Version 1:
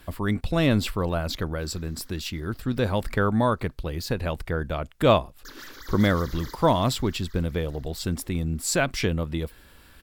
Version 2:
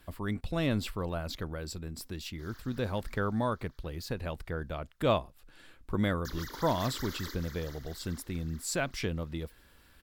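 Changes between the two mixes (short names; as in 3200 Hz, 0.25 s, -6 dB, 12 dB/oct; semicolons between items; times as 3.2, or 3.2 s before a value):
speech -8.5 dB; background: entry +0.80 s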